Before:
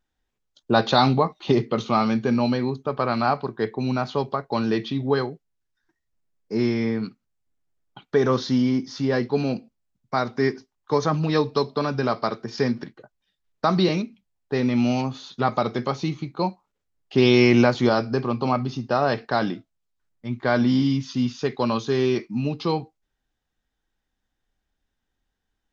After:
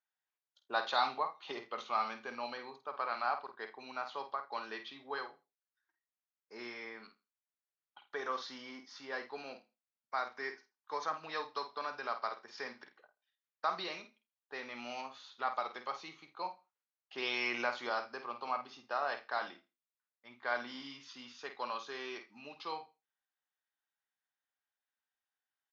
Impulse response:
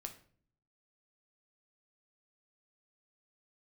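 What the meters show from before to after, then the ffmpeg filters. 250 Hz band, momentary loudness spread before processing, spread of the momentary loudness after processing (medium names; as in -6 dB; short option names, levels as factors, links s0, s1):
-30.0 dB, 9 LU, 14 LU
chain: -filter_complex "[0:a]highpass=1100,highshelf=f=3100:g=-12,asplit=2[s0][s1];[s1]adelay=50,volume=0.335[s2];[s0][s2]amix=inputs=2:normalize=0,aecho=1:1:82|164:0.0891|0.0152,volume=0.501"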